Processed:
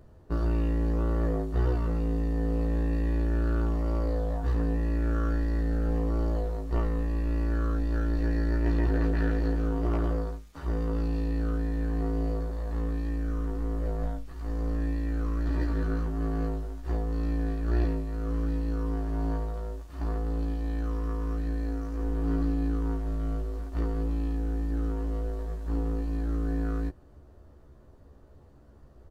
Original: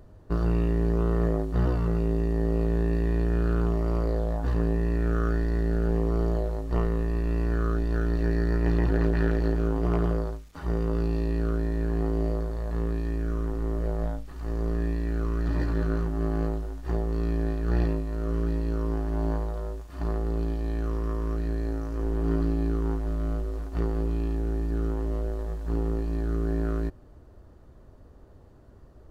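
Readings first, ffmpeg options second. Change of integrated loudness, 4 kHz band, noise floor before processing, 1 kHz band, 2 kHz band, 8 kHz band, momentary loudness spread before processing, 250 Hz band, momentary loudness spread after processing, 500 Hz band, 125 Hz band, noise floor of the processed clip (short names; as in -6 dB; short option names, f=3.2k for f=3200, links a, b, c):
-2.0 dB, -2.0 dB, -50 dBFS, -2.0 dB, -2.5 dB, n/a, 6 LU, -1.5 dB, 5 LU, -5.0 dB, -2.5 dB, -53 dBFS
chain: -filter_complex "[0:a]asplit=2[a][b];[b]adelay=14,volume=-4dB[c];[a][c]amix=inputs=2:normalize=0,volume=-3.5dB"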